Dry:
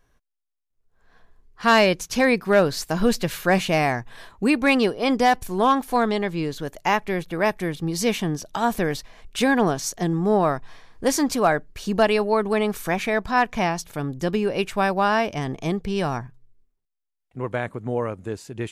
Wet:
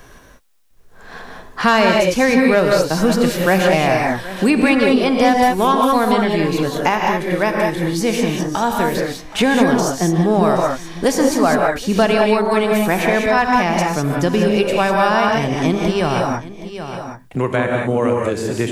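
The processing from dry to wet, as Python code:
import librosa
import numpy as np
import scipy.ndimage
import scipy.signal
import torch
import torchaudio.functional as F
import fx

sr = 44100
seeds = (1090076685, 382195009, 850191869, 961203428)

y = fx.comb_fb(x, sr, f0_hz=67.0, decay_s=0.35, harmonics='all', damping=0.0, mix_pct=50, at=(6.89, 9.39))
y = y + 10.0 ** (-22.5 / 20.0) * np.pad(y, (int(771 * sr / 1000.0), 0))[:len(y)]
y = fx.rev_gated(y, sr, seeds[0], gate_ms=220, shape='rising', drr_db=0.5)
y = fx.band_squash(y, sr, depth_pct=70)
y = F.gain(torch.from_numpy(y), 3.0).numpy()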